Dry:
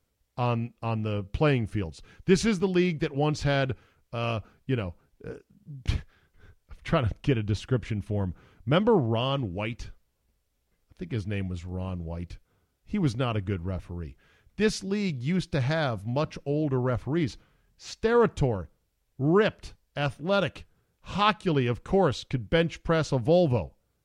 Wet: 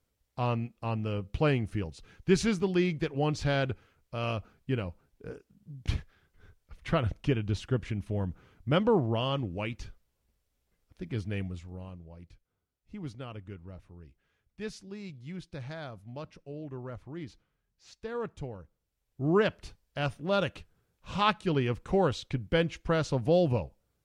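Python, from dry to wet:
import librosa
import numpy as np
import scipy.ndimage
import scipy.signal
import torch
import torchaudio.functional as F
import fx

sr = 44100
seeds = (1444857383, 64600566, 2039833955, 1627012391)

y = fx.gain(x, sr, db=fx.line((11.4, -3.0), (12.08, -14.0), (18.5, -14.0), (19.35, -3.0)))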